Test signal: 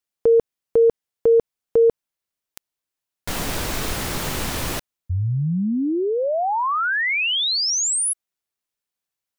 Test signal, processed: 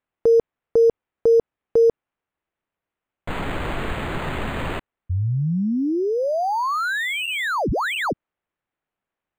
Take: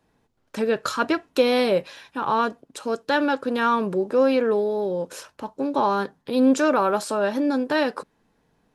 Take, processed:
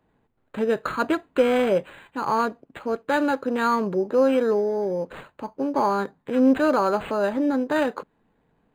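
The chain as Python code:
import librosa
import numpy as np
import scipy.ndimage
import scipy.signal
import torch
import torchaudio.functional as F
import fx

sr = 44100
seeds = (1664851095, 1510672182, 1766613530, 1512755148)

y = np.interp(np.arange(len(x)), np.arange(len(x))[::8], x[::8])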